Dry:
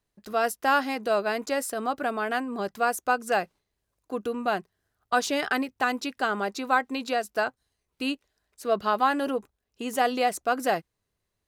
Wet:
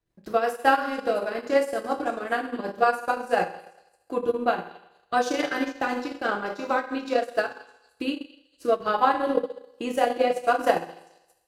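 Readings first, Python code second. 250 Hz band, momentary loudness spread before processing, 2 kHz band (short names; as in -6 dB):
+1.0 dB, 8 LU, -0.5 dB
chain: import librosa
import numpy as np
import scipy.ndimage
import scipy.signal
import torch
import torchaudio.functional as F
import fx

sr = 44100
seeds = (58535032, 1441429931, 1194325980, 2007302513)

y = fx.high_shelf(x, sr, hz=3800.0, db=-8.0)
y = fx.rotary_switch(y, sr, hz=5.5, then_hz=1.2, switch_at_s=7.88)
y = fx.echo_stepped(y, sr, ms=219, hz=3700.0, octaves=0.7, feedback_pct=70, wet_db=-9.5)
y = fx.rev_fdn(y, sr, rt60_s=0.96, lf_ratio=0.75, hf_ratio=0.95, size_ms=18.0, drr_db=-1.5)
y = fx.transient(y, sr, attack_db=6, sustain_db=-10)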